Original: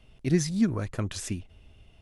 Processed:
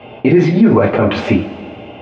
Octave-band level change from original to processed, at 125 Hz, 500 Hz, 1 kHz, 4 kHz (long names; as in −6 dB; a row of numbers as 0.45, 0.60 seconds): +12.5, +21.5, +23.5, +11.5 decibels